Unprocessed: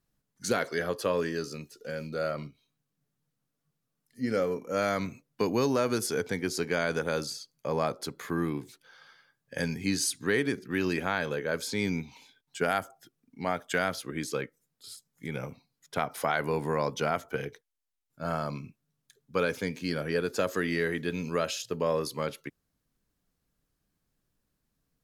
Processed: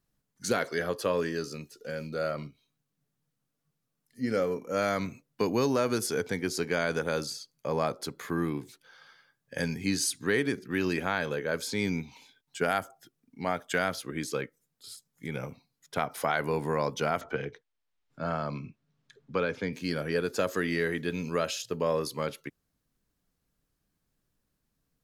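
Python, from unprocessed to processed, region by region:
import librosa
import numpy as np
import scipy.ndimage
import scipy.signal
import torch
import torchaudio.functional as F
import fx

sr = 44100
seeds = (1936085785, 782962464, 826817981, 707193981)

y = fx.chain(x, sr, fx.lowpass(hz=4300.0, slope=12),
    fx.band_squash(depth_pct=40), at=(17.21, 19.73))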